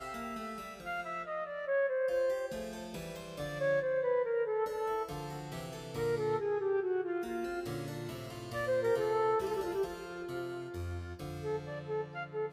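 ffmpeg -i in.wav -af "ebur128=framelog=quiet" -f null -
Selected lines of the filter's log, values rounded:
Integrated loudness:
  I:         -35.7 LUFS
  Threshold: -45.7 LUFS
Loudness range:
  LRA:         2.2 LU
  Threshold: -55.2 LUFS
  LRA low:   -36.4 LUFS
  LRA high:  -34.1 LUFS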